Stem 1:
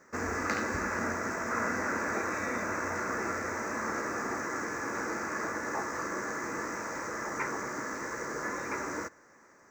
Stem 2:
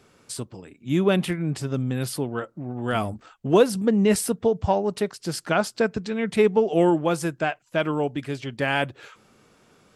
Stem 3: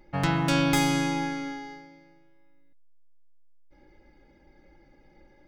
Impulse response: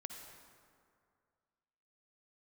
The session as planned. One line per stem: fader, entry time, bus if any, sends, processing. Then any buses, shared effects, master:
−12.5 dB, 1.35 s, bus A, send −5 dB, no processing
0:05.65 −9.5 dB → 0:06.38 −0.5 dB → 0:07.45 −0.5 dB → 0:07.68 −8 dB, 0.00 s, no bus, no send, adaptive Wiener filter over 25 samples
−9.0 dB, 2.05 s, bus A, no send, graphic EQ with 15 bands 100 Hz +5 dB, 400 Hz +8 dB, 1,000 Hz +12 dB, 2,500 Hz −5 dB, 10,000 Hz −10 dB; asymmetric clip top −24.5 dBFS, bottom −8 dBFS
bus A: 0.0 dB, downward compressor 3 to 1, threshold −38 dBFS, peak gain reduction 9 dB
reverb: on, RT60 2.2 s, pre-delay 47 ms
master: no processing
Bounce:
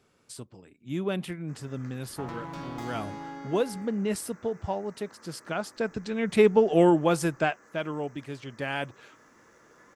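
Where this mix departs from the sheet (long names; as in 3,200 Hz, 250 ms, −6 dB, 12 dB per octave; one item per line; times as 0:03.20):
stem 1 −12.5 dB → −24.5 dB
stem 2: missing adaptive Wiener filter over 25 samples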